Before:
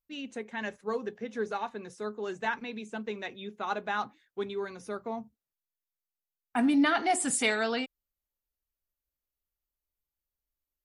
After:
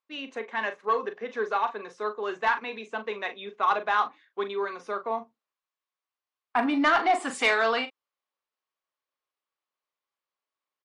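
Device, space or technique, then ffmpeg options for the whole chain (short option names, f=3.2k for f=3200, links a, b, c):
intercom: -filter_complex "[0:a]asettb=1/sr,asplit=3[a][b][c];[a]atrim=end=6.604[d];[b]atrim=start=6.6:end=7.35,asetpts=PTS-STARTPTS,afade=t=in:d=0.004:c=qsin,afade=t=out:st=0.746:d=0.004:c=qsin,highshelf=f=4.4k:g=-4.5[e];[c]atrim=start=7.346[f];[d][e]acrossfade=d=0.004:c1=hsin:c2=qsin[g];[g][f]acrossfade=d=0.004:c1=qsin:c2=hsin,highpass=440,lowpass=3.7k,equalizer=f=1.1k:t=o:w=0.27:g=9.5,asoftclip=type=tanh:threshold=-20dB,asplit=2[h][i];[i]adelay=40,volume=-10.5dB[j];[h][j]amix=inputs=2:normalize=0,volume=6.5dB"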